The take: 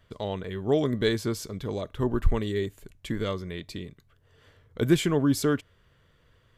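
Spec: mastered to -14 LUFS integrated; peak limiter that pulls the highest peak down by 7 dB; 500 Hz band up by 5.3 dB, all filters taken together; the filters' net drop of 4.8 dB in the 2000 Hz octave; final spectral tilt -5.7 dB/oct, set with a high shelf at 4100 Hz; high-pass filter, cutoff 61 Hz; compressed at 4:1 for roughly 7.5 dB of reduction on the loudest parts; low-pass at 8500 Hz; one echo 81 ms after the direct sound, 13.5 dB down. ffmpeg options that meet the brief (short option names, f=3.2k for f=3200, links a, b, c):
-af "highpass=61,lowpass=8.5k,equalizer=f=500:t=o:g=7,equalizer=f=2k:t=o:g=-8,highshelf=f=4.1k:g=6,acompressor=threshold=-22dB:ratio=4,alimiter=limit=-21dB:level=0:latency=1,aecho=1:1:81:0.211,volume=17.5dB"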